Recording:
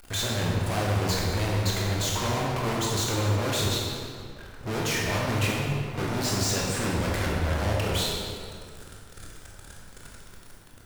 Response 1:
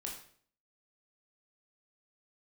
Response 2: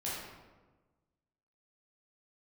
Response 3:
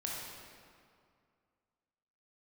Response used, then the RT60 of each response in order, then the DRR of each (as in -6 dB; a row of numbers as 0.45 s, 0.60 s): 3; 0.55 s, 1.3 s, 2.2 s; -1.5 dB, -8.5 dB, -4.0 dB